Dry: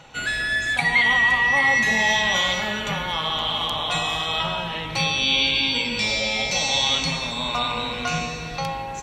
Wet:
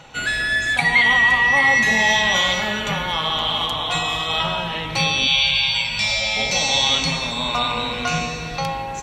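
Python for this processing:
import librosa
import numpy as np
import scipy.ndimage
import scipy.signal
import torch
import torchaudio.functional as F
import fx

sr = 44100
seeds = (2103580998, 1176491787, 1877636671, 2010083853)

y = fx.notch_comb(x, sr, f0_hz=200.0, at=(3.66, 4.3))
y = fx.ellip_bandstop(y, sr, low_hz=190.0, high_hz=600.0, order=3, stop_db=40, at=(5.27, 6.37))
y = F.gain(torch.from_numpy(y), 3.0).numpy()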